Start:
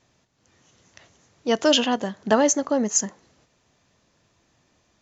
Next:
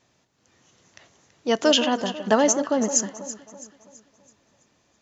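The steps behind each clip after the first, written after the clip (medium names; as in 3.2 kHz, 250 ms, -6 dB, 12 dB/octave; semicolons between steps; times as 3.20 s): bass shelf 82 Hz -8.5 dB; on a send: echo whose repeats swap between lows and highs 165 ms, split 1.3 kHz, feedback 65%, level -10.5 dB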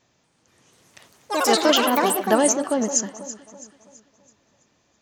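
ever faster or slower copies 239 ms, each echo +5 st, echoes 3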